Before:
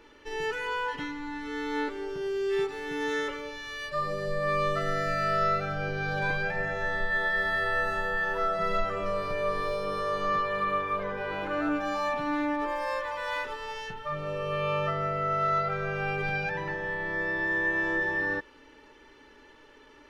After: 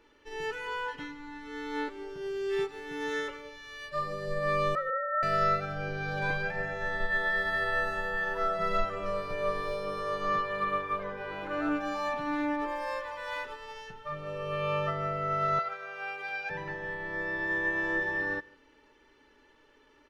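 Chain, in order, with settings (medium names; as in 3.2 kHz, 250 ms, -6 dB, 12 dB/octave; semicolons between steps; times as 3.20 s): 4.75–5.23 s: formants replaced by sine waves; 15.59–16.50 s: high-pass 670 Hz 12 dB/octave; delay 149 ms -19 dB; upward expansion 1.5:1, over -39 dBFS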